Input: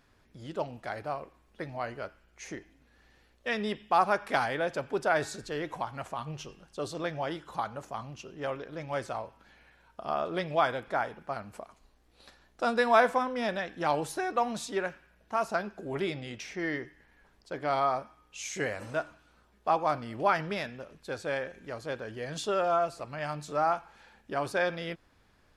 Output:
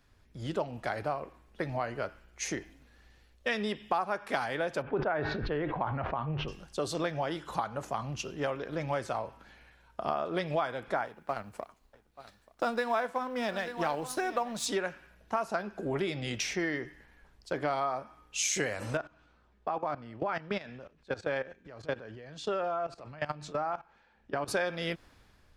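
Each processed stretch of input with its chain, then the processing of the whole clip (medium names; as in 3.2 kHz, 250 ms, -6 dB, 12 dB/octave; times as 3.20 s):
4.82–6.48 s: Gaussian low-pass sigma 3.2 samples + decay stretcher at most 46 dB/s
11.05–14.66 s: companding laws mixed up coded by A + delay 882 ms -17 dB
18.97–24.48 s: distance through air 93 m + level held to a coarse grid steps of 17 dB
whole clip: compression 6:1, threshold -37 dBFS; three bands expanded up and down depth 40%; trim +8 dB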